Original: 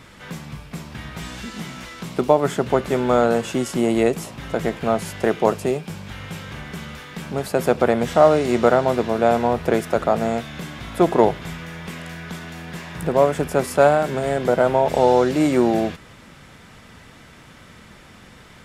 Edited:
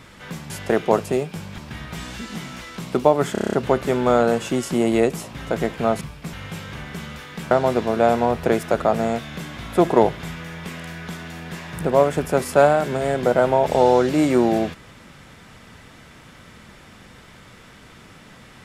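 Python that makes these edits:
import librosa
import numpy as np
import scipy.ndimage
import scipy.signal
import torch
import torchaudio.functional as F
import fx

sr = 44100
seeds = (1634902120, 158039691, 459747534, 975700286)

y = fx.edit(x, sr, fx.swap(start_s=0.5, length_s=0.32, other_s=5.04, other_length_s=1.08),
    fx.stutter(start_s=2.56, slice_s=0.03, count=8),
    fx.cut(start_s=7.3, length_s=1.43), tone=tone)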